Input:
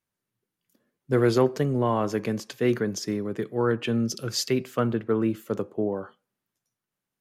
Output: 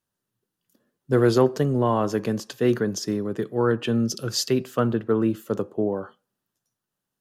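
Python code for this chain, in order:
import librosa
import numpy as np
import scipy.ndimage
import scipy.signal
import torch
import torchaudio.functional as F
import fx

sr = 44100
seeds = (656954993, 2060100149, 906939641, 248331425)

y = fx.peak_eq(x, sr, hz=2200.0, db=-9.5, octaves=0.28)
y = y * 10.0 ** (2.5 / 20.0)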